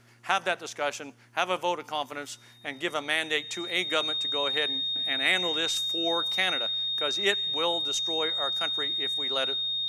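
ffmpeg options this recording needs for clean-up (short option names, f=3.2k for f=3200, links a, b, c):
-af "bandreject=f=118.6:t=h:w=4,bandreject=f=237.2:t=h:w=4,bandreject=f=355.8:t=h:w=4,bandreject=f=3.7k:w=30"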